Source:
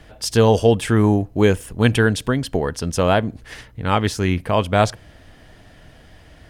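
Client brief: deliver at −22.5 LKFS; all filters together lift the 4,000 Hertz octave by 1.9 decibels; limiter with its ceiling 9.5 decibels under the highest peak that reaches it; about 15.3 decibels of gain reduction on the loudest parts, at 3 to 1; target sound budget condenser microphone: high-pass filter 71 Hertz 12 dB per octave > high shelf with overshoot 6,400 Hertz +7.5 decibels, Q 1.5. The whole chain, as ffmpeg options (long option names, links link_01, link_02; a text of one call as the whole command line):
ffmpeg -i in.wav -af "equalizer=frequency=4000:width_type=o:gain=4.5,acompressor=threshold=-31dB:ratio=3,alimiter=level_in=1.5dB:limit=-24dB:level=0:latency=1,volume=-1.5dB,highpass=71,highshelf=frequency=6400:width_type=q:width=1.5:gain=7.5,volume=13dB" out.wav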